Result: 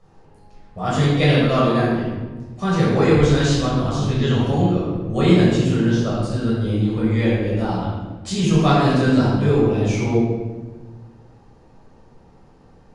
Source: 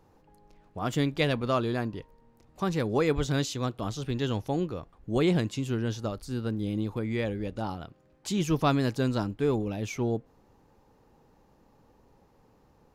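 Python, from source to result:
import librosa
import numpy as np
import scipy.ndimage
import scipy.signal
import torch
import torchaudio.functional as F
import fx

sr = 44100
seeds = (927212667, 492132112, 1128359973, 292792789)

y = scipy.signal.sosfilt(scipy.signal.ellip(4, 1.0, 40, 10000.0, 'lowpass', fs=sr, output='sos'), x)
y = fx.room_shoebox(y, sr, seeds[0], volume_m3=870.0, walls='mixed', distance_m=6.2)
y = y * 10.0 ** (-1.0 / 20.0)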